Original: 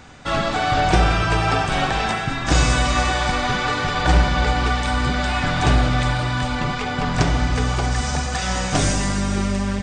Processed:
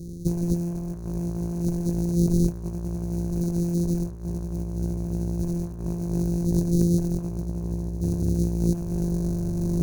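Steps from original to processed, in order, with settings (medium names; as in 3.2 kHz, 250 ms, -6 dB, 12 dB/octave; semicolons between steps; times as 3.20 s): sorted samples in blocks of 256 samples; inverse Chebyshev band-stop 800–2700 Hz, stop band 50 dB; treble shelf 2.9 kHz -9.5 dB; in parallel at -7.5 dB: wavefolder -19.5 dBFS; on the sum: rippled EQ curve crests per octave 1.5, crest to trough 7 dB; saturation -9.5 dBFS, distortion -22 dB; compressor with a negative ratio -24 dBFS, ratio -0.5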